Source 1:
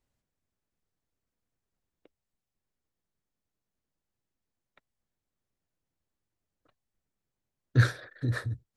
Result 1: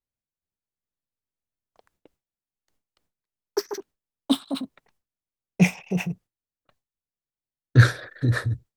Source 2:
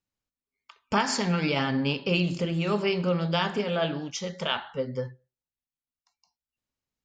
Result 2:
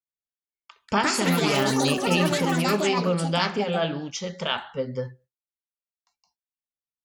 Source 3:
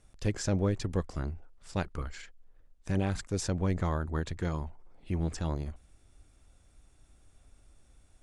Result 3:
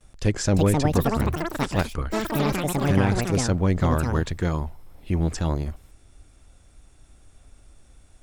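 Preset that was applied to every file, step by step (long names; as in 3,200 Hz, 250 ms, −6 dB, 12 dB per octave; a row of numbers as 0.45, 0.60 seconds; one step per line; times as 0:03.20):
delay with pitch and tempo change per echo 421 ms, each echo +7 semitones, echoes 3
noise gate with hold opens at −57 dBFS
loudness normalisation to −24 LKFS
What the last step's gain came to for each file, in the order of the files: +7.5, +1.5, +8.0 decibels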